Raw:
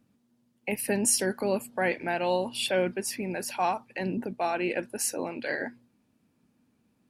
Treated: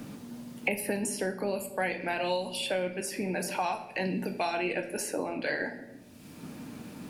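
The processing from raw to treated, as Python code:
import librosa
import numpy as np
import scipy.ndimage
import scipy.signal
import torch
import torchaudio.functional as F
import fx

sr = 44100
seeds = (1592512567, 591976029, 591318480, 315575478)

y = fx.room_shoebox(x, sr, seeds[0], volume_m3=110.0, walls='mixed', distance_m=0.43)
y = fx.band_squash(y, sr, depth_pct=100)
y = y * librosa.db_to_amplitude(-4.0)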